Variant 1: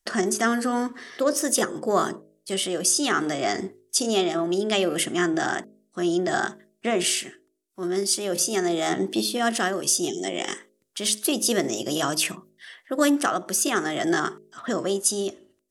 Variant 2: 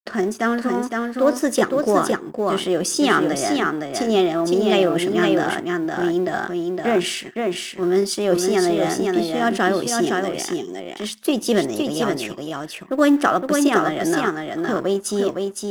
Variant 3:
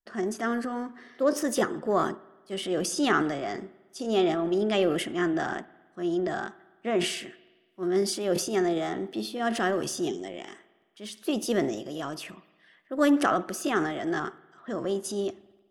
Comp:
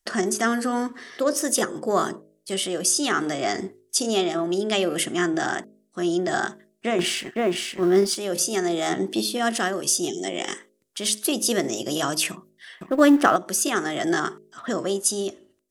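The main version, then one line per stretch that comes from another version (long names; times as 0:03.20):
1
0:06.99–0:08.16: punch in from 2
0:12.81–0:13.36: punch in from 2
not used: 3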